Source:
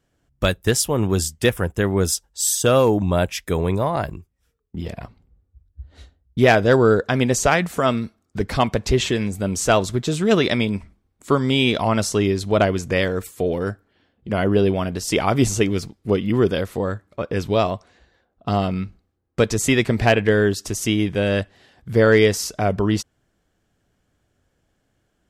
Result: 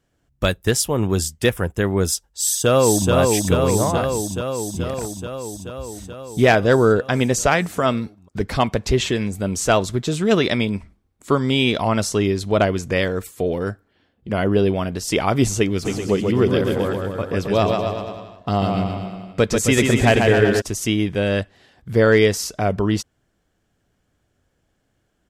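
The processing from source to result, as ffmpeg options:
-filter_complex "[0:a]asplit=2[a][b];[b]afade=t=in:st=2.26:d=0.01,afade=t=out:st=3.12:d=0.01,aecho=0:1:430|860|1290|1720|2150|2580|3010|3440|3870|4300|4730|5160:0.749894|0.562421|0.421815|0.316362|0.237271|0.177953|0.133465|0.100099|0.0750741|0.0563056|0.0422292|0.0316719[c];[a][c]amix=inputs=2:normalize=0,asplit=3[d][e][f];[d]afade=t=out:st=15.84:d=0.02[g];[e]aecho=1:1:140|266|379.4|481.5|573.3|656|730.4:0.631|0.398|0.251|0.158|0.1|0.0631|0.0398,afade=t=in:st=15.84:d=0.02,afade=t=out:st=20.6:d=0.02[h];[f]afade=t=in:st=20.6:d=0.02[i];[g][h][i]amix=inputs=3:normalize=0"

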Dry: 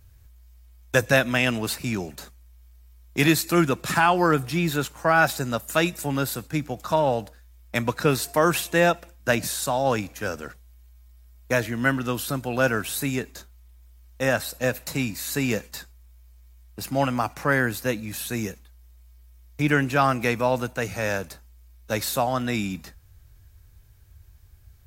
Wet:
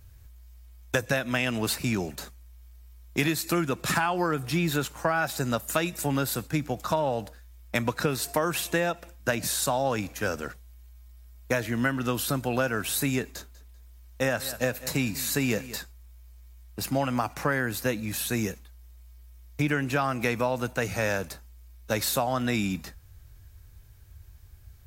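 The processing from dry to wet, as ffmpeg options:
-filter_complex "[0:a]asettb=1/sr,asplit=3[a][b][c];[a]atrim=end=13.224[d];[b]atrim=start=13.22:end=15.76,asetpts=PTS-STARTPTS,afade=t=in:d=0.004:c=qsin,afade=t=out:st=2.536:d=0.004:c=qsin,aecho=1:1:194|388|582:0.112|0.0348|0.0108,atrim=end_sample=112014[e];[c]atrim=start=15.756[f];[d][e]acrossfade=d=0.004:c1=hsin:c2=qsin[g];[g][f]acrossfade=d=0.004:c1=qsin:c2=hsin,acompressor=threshold=-23dB:ratio=10,volume=1.5dB"

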